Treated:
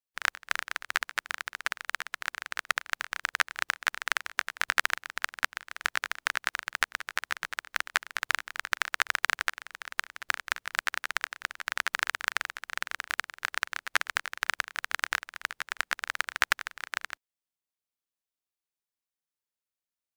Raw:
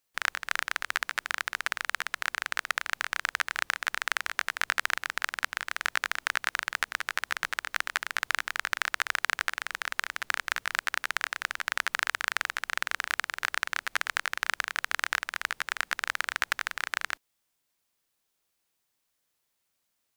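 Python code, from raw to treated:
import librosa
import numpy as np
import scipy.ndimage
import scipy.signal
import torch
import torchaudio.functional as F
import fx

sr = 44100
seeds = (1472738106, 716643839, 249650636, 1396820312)

y = fx.upward_expand(x, sr, threshold_db=-39.0, expansion=2.5)
y = y * librosa.db_to_amplitude(4.5)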